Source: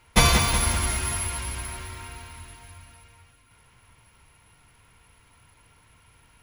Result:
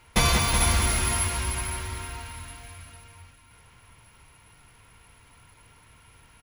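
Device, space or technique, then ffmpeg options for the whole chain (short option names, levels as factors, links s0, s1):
soft clipper into limiter: -af "aecho=1:1:439:0.266,asoftclip=type=tanh:threshold=0.531,alimiter=limit=0.224:level=0:latency=1:release=442,volume=1.33"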